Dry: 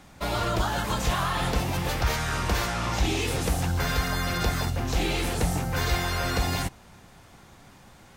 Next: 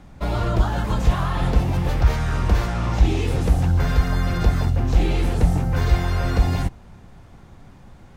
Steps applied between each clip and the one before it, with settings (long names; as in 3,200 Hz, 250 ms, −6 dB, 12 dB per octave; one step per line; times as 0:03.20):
spectral tilt −2.5 dB per octave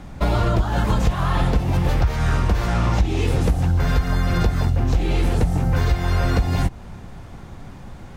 downward compressor 10 to 1, threshold −22 dBFS, peak gain reduction 13.5 dB
level +7.5 dB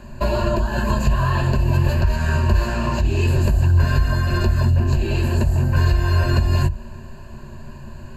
EQ curve with evenly spaced ripples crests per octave 1.4, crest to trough 17 dB
level −2.5 dB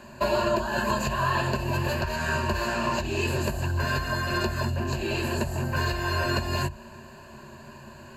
high-pass filter 400 Hz 6 dB per octave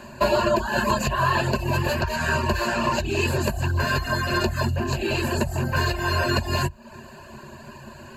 reverb reduction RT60 0.59 s
level +5 dB